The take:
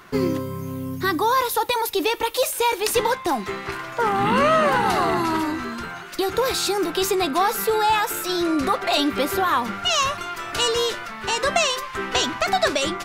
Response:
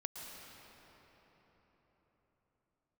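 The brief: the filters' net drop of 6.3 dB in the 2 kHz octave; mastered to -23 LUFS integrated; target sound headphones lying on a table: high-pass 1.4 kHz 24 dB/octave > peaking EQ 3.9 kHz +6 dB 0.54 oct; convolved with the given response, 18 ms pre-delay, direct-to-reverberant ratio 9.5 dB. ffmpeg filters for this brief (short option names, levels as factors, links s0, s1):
-filter_complex "[0:a]equalizer=f=2000:t=o:g=-8.5,asplit=2[s0][s1];[1:a]atrim=start_sample=2205,adelay=18[s2];[s1][s2]afir=irnorm=-1:irlink=0,volume=0.376[s3];[s0][s3]amix=inputs=2:normalize=0,highpass=f=1400:w=0.5412,highpass=f=1400:w=1.3066,equalizer=f=3900:t=o:w=0.54:g=6,volume=1.33"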